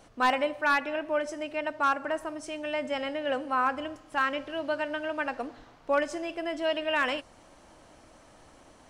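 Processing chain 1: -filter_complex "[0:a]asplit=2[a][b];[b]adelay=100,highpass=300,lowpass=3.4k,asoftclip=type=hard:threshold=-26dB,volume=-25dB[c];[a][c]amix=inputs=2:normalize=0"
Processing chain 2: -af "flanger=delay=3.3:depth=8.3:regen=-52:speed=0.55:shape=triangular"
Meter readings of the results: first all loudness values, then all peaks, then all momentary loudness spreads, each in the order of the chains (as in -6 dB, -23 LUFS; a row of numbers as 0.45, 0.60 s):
-30.0, -34.0 LUFS; -16.5, -18.5 dBFS; 8, 8 LU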